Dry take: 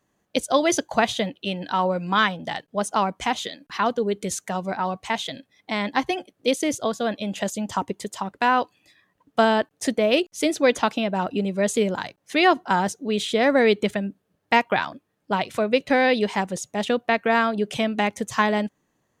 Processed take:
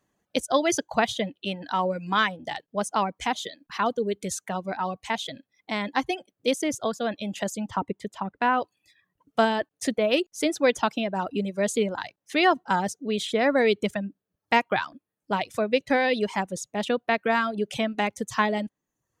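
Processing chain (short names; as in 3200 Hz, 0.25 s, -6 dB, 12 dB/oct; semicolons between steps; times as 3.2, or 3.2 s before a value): reverb removal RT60 0.68 s; 7.69–8.62 tone controls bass +3 dB, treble -14 dB; gain -2.5 dB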